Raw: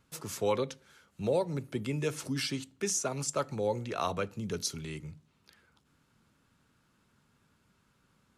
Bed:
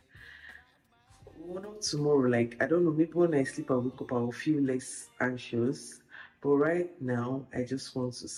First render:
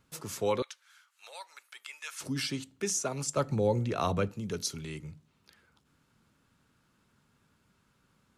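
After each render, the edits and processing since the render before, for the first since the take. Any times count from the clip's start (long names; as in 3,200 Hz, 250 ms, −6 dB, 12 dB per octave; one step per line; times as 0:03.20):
0:00.62–0:02.21: high-pass filter 1,100 Hz 24 dB per octave
0:03.37–0:04.32: low-shelf EQ 320 Hz +10 dB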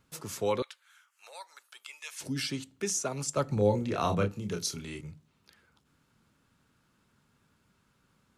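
0:00.68–0:02.45: parametric band 6,400 Hz → 960 Hz −13.5 dB 0.26 octaves
0:03.54–0:05.01: double-tracking delay 29 ms −5.5 dB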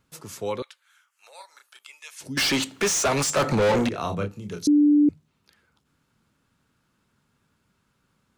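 0:01.35–0:01.79: double-tracking delay 32 ms −4 dB
0:02.37–0:03.89: mid-hump overdrive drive 32 dB, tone 4,700 Hz, clips at −13.5 dBFS
0:04.67–0:05.09: beep over 294 Hz −13.5 dBFS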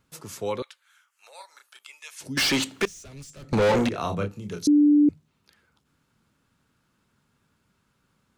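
0:02.85–0:03.53: guitar amp tone stack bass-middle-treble 10-0-1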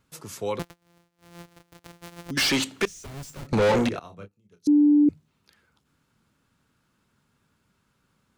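0:00.59–0:02.31: samples sorted by size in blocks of 256 samples
0:03.03–0:03.47: each half-wave held at its own peak
0:03.99–0:05.06: expander for the loud parts 2.5 to 1, over −36 dBFS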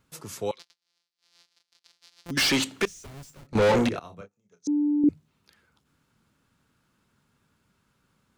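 0:00.51–0:02.26: resonant band-pass 4,600 Hz, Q 2.7
0:02.76–0:03.55: fade out, to −16 dB
0:04.21–0:05.04: loudspeaker in its box 200–7,700 Hz, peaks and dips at 220 Hz −4 dB, 330 Hz −10 dB, 710 Hz +4 dB, 2,900 Hz −8 dB, 4,300 Hz −7 dB, 6,400 Hz +8 dB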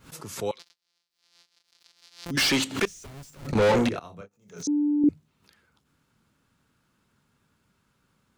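background raised ahead of every attack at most 140 dB per second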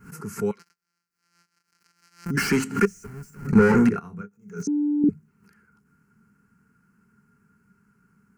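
phaser with its sweep stopped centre 1,500 Hz, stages 4
hollow resonant body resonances 200/420/620/1,400 Hz, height 15 dB, ringing for 50 ms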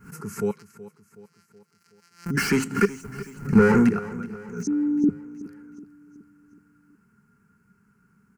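repeating echo 373 ms, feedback 52%, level −17 dB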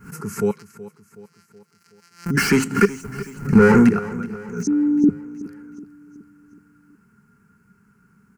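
level +5 dB
brickwall limiter −3 dBFS, peak gain reduction 3 dB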